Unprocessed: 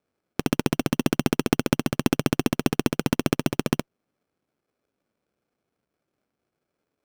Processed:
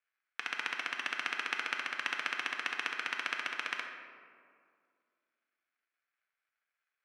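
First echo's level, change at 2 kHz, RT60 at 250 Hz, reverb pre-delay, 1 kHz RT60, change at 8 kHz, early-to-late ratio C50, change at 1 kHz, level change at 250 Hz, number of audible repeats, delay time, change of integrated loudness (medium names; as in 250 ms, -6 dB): no echo, +0.5 dB, 2.6 s, 3 ms, 2.0 s, -15.5 dB, 4.0 dB, -7.5 dB, -33.0 dB, no echo, no echo, -10.5 dB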